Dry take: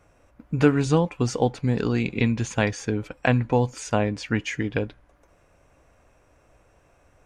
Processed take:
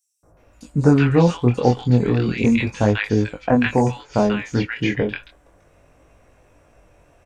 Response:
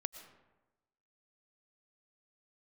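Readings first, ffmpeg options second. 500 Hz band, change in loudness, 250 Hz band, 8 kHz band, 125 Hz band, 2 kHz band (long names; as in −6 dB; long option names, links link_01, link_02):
+4.5 dB, +5.5 dB, +6.0 dB, −3.5 dB, +5.5 dB, +3.5 dB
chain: -filter_complex "[0:a]flanger=delay=19:depth=5.9:speed=0.34,acrossover=split=1300|5900[link_01][link_02][link_03];[link_01]adelay=230[link_04];[link_02]adelay=370[link_05];[link_04][link_05][link_03]amix=inputs=3:normalize=0,acrossover=split=5400[link_06][link_07];[link_07]acompressor=threshold=-58dB:ratio=4:attack=1:release=60[link_08];[link_06][link_08]amix=inputs=2:normalize=0,volume=8.5dB"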